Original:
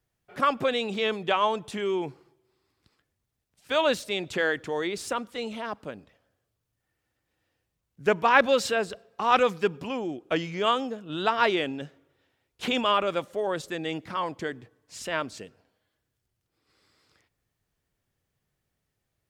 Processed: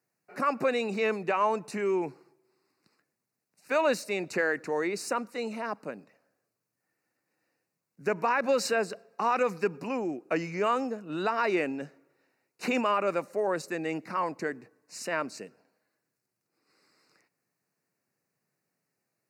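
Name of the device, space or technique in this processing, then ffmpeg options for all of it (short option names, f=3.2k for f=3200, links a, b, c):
PA system with an anti-feedback notch: -af "highpass=f=160:w=0.5412,highpass=f=160:w=1.3066,asuperstop=centerf=3300:order=4:qfactor=2.5,alimiter=limit=-16.5dB:level=0:latency=1:release=88"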